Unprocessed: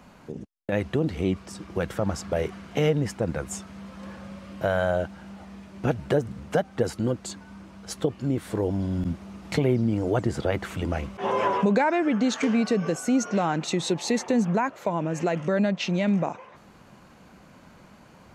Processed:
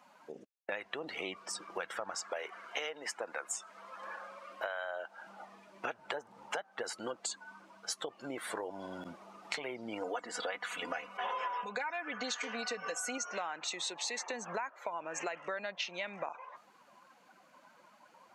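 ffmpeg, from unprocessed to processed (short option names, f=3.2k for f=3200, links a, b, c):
-filter_complex "[0:a]asettb=1/sr,asplit=3[a][b][c];[a]atrim=end=2.214[d];[b]atrim=start=2.21:end=5.27,asetpts=PTS-STARTPTS,afade=t=in:d=0.004:c=qsin,afade=t=out:st=3.056:d=0.004:c=qsin,highpass=300[e];[c]atrim=start=5.266[f];[d][e]acrossfade=d=0.004:c1=hsin:c2=qsin[g];[g][f]acrossfade=d=0.004:c1=qsin:c2=hsin,asettb=1/sr,asplit=3[h][i][j];[h]atrim=end=6.084[k];[i]atrim=start=6.08:end=6.58,asetpts=PTS-STARTPTS,afade=t=in:d=0.004:c=qsin,afade=t=out:st=0.496:d=0.004:c=qsin,equalizer=f=880:t=o:w=0.22:g=9[l];[j]atrim=start=6.576[m];[k][l]acrossfade=d=0.004:c1=hsin:c2=qsin[n];[n][m]acrossfade=d=0.004:c1=qsin:c2=hsin,asettb=1/sr,asplit=3[o][p][q];[o]atrim=end=10.014[r];[p]atrim=start=10.01:end=13.18,asetpts=PTS-STARTPTS,afade=t=in:d=0.004:c=qsin,afade=t=out:st=3.166:d=0.004:c=qsin,aecho=1:1:4.1:0.82,atrim=end_sample=139797[s];[q]atrim=start=13.176[t];[r][s]acrossfade=d=0.004:c1=hsin:c2=qsin[u];[u][t]acrossfade=d=0.004:c1=qsin:c2=hsin,afftdn=nr=16:nf=-46,highpass=990,acompressor=threshold=-42dB:ratio=10,volume=7dB"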